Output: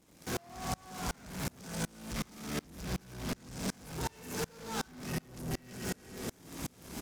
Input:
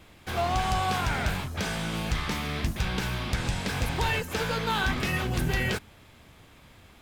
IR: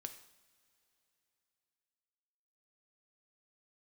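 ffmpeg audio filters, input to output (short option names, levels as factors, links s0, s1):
-filter_complex "[0:a]asplit=2[s0][s1];[s1]alimiter=level_in=1.33:limit=0.0631:level=0:latency=1,volume=0.75,volume=1.41[s2];[s0][s2]amix=inputs=2:normalize=0,aecho=1:1:113:0.398,acrusher=bits=7:dc=4:mix=0:aa=0.000001,equalizer=f=260:w=0.66:g=10[s3];[1:a]atrim=start_sample=2205,afade=t=out:st=0.42:d=0.01,atrim=end_sample=18963,asetrate=28224,aresample=44100[s4];[s3][s4]afir=irnorm=-1:irlink=0,areverse,acompressor=mode=upward:threshold=0.0708:ratio=2.5,areverse,highpass=f=40:p=1,acompressor=threshold=0.0708:ratio=6,asoftclip=type=tanh:threshold=0.0266,highshelf=f=4500:t=q:w=1.5:g=7,aeval=exprs='val(0)*pow(10,-31*if(lt(mod(-2.7*n/s,1),2*abs(-2.7)/1000),1-mod(-2.7*n/s,1)/(2*abs(-2.7)/1000),(mod(-2.7*n/s,1)-2*abs(-2.7)/1000)/(1-2*abs(-2.7)/1000))/20)':c=same,volume=1.33"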